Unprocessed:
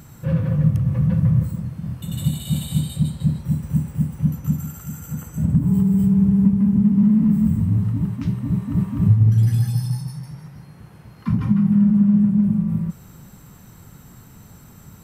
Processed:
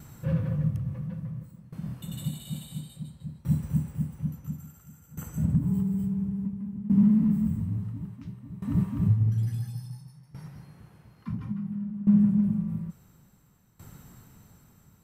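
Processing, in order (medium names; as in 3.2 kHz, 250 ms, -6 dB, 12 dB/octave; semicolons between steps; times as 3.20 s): 0.96–3.08 s: peaking EQ 82 Hz -10 dB 0.87 oct; sawtooth tremolo in dB decaying 0.58 Hz, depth 18 dB; trim -3 dB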